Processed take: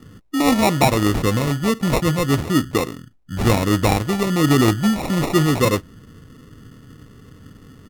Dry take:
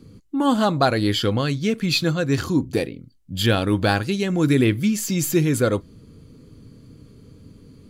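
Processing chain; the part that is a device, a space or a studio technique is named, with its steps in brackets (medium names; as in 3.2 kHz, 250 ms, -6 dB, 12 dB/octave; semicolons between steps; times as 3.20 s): crushed at another speed (playback speed 0.8×; sample-and-hold 35×; playback speed 1.25×); trim +2.5 dB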